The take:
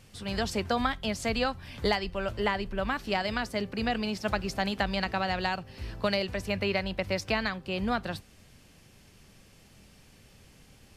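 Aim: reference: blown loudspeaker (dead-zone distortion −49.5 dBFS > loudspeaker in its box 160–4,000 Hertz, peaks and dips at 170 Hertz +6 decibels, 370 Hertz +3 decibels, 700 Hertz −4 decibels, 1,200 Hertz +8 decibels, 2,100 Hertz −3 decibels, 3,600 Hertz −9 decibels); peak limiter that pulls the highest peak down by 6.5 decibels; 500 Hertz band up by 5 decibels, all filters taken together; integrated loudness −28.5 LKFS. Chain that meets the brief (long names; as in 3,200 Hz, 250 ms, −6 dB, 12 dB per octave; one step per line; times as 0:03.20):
parametric band 500 Hz +6 dB
brickwall limiter −18.5 dBFS
dead-zone distortion −49.5 dBFS
loudspeaker in its box 160–4,000 Hz, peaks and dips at 170 Hz +6 dB, 370 Hz +3 dB, 700 Hz −4 dB, 1,200 Hz +8 dB, 2,100 Hz −3 dB, 3,600 Hz −9 dB
level +2.5 dB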